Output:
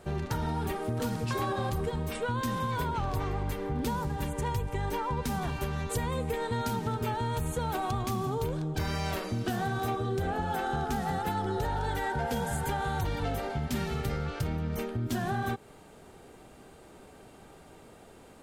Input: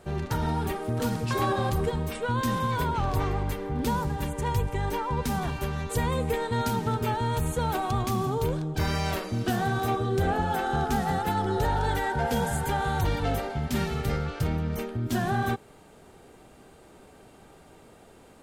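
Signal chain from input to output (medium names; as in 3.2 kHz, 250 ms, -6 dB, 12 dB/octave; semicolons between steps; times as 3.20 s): compression 4:1, threshold -28 dBFS, peak gain reduction 6.5 dB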